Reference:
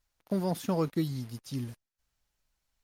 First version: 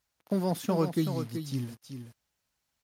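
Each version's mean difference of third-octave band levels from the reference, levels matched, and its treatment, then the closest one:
2.5 dB: high-pass filter 84 Hz
single-tap delay 379 ms −8 dB
level +1.5 dB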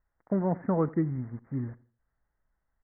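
9.5 dB: Butterworth low-pass 2,000 Hz 96 dB per octave
repeating echo 83 ms, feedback 35%, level −21 dB
level +2.5 dB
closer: first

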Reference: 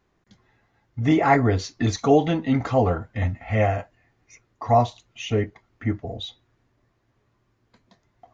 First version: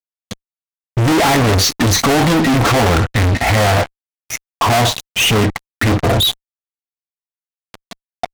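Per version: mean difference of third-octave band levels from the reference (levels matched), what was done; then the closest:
15.5 dB: notch filter 460 Hz, Q 12
fuzz pedal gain 46 dB, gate −49 dBFS
level +1.5 dB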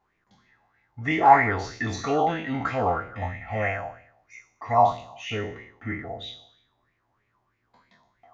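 5.5 dB: peak hold with a decay on every bin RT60 0.68 s
auto-filter bell 3.1 Hz 790–2,300 Hz +17 dB
level −10 dB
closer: second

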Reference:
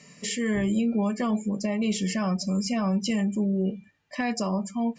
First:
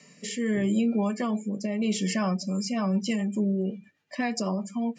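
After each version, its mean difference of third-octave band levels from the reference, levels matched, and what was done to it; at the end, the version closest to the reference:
1.5 dB: high-pass filter 160 Hz 12 dB per octave
rotating-speaker cabinet horn 0.8 Hz, later 8 Hz, at 0:02.17
level +1.5 dB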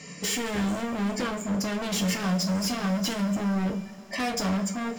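11.5 dB: hard clipping −34.5 dBFS, distortion −5 dB
coupled-rooms reverb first 0.24 s, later 4.9 s, from −22 dB, DRR 3.5 dB
level +7.5 dB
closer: first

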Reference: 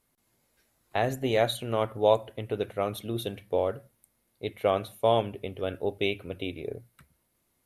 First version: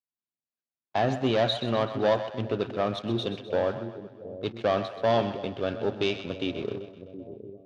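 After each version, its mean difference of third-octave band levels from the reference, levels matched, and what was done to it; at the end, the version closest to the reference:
7.0 dB: noise gate −54 dBFS, range −20 dB
leveller curve on the samples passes 3
loudspeaker in its box 110–5,300 Hz, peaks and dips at 220 Hz +3 dB, 460 Hz −5 dB, 2,100 Hz −7 dB
echo with a time of its own for lows and highs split 530 Hz, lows 719 ms, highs 128 ms, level −11 dB
level −6 dB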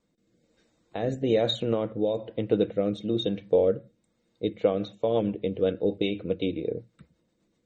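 5.5 dB: brickwall limiter −19 dBFS, peak gain reduction 10 dB
rotating-speaker cabinet horn 1.1 Hz, later 8 Hz, at 0:04.24
hollow resonant body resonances 200/310/470/3,700 Hz, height 14 dB, ringing for 55 ms
MP3 32 kbit/s 44,100 Hz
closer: second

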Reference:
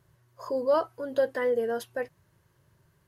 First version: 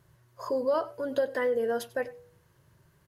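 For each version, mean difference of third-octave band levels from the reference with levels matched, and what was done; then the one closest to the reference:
2.5 dB: hum removal 97.13 Hz, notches 8
downward compressor 2.5 to 1, threshold −28 dBFS, peak gain reduction 6 dB
single-tap delay 95 ms −19 dB
level +2.5 dB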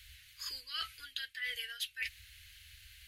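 17.0 dB: inverse Chebyshev band-stop filter 130–1,000 Hz, stop band 40 dB
reversed playback
downward compressor 20 to 1, threshold −56 dBFS, peak gain reduction 21 dB
reversed playback
flat-topped bell 3,100 Hz +9 dB 1.2 octaves
level +15.5 dB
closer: first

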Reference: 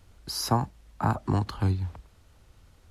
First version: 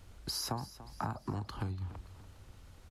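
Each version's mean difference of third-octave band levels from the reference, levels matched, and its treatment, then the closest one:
6.0 dB: downward compressor 6 to 1, threshold −36 dBFS, peak gain reduction 16 dB
on a send: repeating echo 289 ms, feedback 46%, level −16 dB
on the sum: level +1 dB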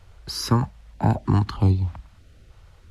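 2.5 dB: low-pass filter 3,700 Hz 6 dB per octave
notch on a step sequencer 3.2 Hz 250–1,600 Hz
level +7 dB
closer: second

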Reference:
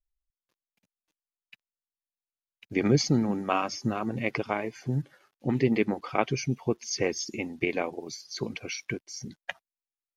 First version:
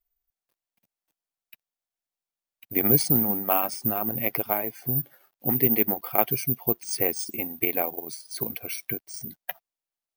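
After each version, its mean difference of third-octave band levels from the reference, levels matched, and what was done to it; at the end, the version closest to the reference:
7.5 dB: bad sample-rate conversion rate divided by 3×, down none, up zero stuff
parametric band 710 Hz +7 dB 0.49 octaves
level −2.5 dB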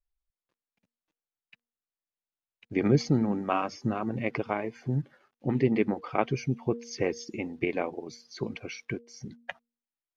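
3.0 dB: low-pass filter 2,000 Hz 6 dB per octave
hum removal 235.9 Hz, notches 2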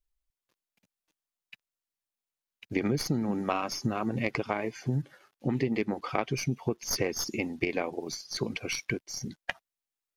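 4.5 dB: stylus tracing distortion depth 0.047 ms
downward compressor 6 to 1, threshold −27 dBFS, peak gain reduction 11 dB
level +2.5 dB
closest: second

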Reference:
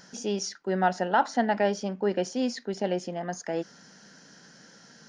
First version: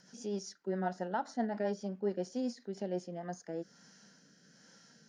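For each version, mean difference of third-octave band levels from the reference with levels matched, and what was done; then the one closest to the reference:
2.5 dB: high-shelf EQ 6,900 Hz +5.5 dB
harmonic and percussive parts rebalanced percussive −7 dB
dynamic equaliser 2,700 Hz, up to −8 dB, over −53 dBFS, Q 1.7
rotating-speaker cabinet horn 7.5 Hz, later 1.2 Hz, at 0:02.52
level −5.5 dB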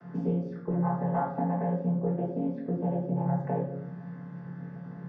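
12.0 dB: channel vocoder with a chord as carrier minor triad, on A#2
low-pass filter 1,200 Hz 12 dB per octave
downward compressor 12 to 1, threshold −38 dBFS, peak gain reduction 18.5 dB
rectangular room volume 200 cubic metres, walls mixed, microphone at 1.5 metres
level +7 dB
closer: first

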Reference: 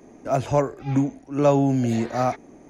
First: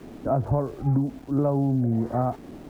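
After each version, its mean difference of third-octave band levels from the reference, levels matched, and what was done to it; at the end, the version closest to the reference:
7.0 dB: low-pass filter 1,300 Hz 24 dB per octave
low-shelf EQ 230 Hz +10.5 dB
downward compressor 6 to 1, threshold −22 dBFS, peak gain reduction 12 dB
centre clipping without the shift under −49 dBFS
level +2 dB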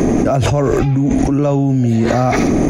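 10.0 dB: low-shelf EQ 230 Hz +11 dB
notch filter 900 Hz, Q 12
delay with a high-pass on its return 77 ms, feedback 47%, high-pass 2,300 Hz, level −13 dB
envelope flattener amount 100%
level −2.5 dB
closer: first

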